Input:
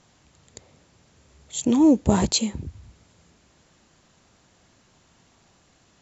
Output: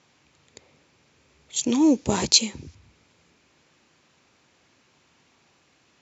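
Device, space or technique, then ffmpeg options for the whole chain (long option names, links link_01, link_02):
car door speaker: -filter_complex "[0:a]asettb=1/sr,asplit=3[link_01][link_02][link_03];[link_01]atrim=end=1.564[link_04];[link_02]atrim=start=1.56:end=2.75,asetpts=PTS-STARTPTS,afade=type=in:duration=0.004:curve=qsin,afade=type=out:start_time=1.186:duration=0.004:curve=qsin,equalizer=frequency=5700:width_type=o:width=1.3:gain=11.5[link_05];[link_03]atrim=start=2.746[link_06];[link_04][link_05]acrossfade=duration=0.004:curve1=hsin:curve2=qsin[link_07];[link_07][link_06]acrossfade=duration=0.004:curve1=qsin:curve2=hsin,highpass=110,equalizer=frequency=110:width_type=q:width=4:gain=-5,equalizer=frequency=190:width_type=q:width=4:gain=-7,equalizer=frequency=670:width_type=q:width=4:gain=-4,equalizer=frequency=2400:width_type=q:width=4:gain=6,lowpass=frequency=6600:width=0.5412,lowpass=frequency=6600:width=1.3066,volume=-1.5dB"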